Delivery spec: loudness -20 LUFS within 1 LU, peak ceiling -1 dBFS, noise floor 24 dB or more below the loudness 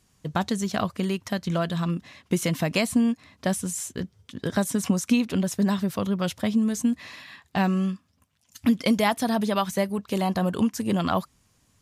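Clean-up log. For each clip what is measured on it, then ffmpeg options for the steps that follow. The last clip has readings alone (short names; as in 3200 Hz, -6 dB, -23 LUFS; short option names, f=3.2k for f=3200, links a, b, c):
loudness -26.0 LUFS; peak -9.0 dBFS; loudness target -20.0 LUFS
-> -af "volume=6dB"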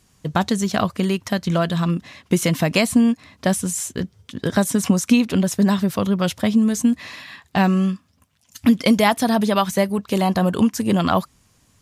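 loudness -20.0 LUFS; peak -3.0 dBFS; noise floor -60 dBFS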